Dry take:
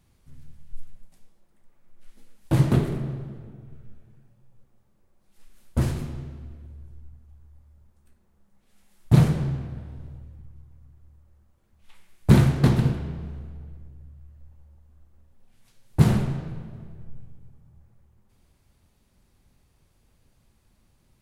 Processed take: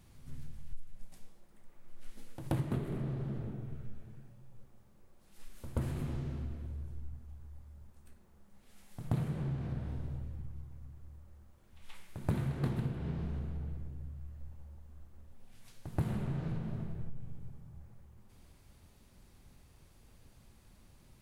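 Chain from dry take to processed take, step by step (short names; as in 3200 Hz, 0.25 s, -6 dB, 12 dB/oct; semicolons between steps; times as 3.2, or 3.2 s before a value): dynamic EQ 5500 Hz, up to -7 dB, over -58 dBFS, Q 1.3; compressor 6:1, threshold -35 dBFS, peak gain reduction 23.5 dB; on a send: reverse echo 0.129 s -13.5 dB; on the sum: gain +3 dB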